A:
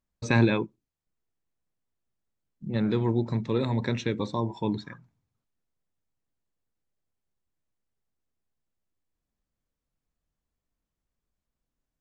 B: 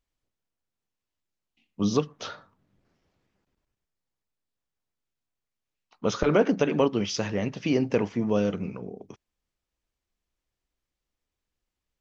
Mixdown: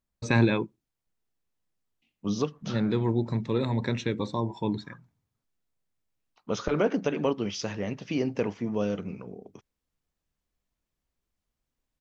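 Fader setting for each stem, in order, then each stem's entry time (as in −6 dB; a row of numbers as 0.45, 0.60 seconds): −0.5, −4.0 decibels; 0.00, 0.45 seconds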